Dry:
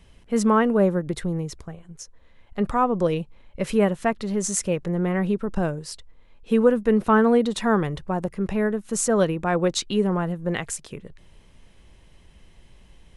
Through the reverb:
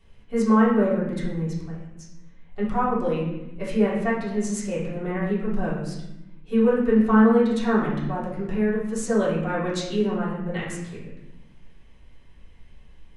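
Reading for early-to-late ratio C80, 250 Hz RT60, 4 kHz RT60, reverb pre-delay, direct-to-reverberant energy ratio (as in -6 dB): 5.5 dB, 1.5 s, 0.70 s, 3 ms, -8.5 dB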